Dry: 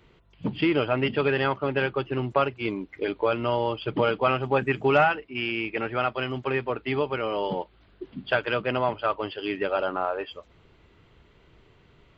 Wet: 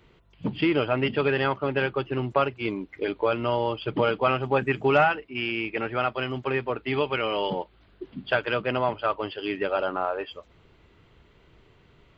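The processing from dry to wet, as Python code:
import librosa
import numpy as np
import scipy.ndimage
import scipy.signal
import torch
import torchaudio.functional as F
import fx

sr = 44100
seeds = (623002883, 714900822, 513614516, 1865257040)

y = fx.peak_eq(x, sr, hz=2700.0, db=7.5, octaves=1.4, at=(6.93, 7.5))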